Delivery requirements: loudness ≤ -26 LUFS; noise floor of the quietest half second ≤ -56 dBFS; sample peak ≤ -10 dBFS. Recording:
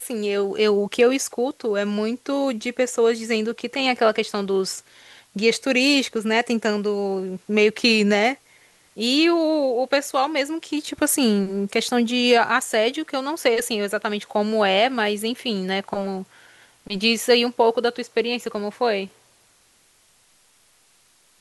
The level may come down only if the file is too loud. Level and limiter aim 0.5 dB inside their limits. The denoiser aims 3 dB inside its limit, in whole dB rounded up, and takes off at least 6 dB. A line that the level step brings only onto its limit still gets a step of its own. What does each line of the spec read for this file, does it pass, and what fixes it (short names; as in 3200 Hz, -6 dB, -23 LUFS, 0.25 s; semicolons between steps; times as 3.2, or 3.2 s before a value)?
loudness -21.5 LUFS: fail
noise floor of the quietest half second -59 dBFS: OK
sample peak -6.0 dBFS: fail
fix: gain -5 dB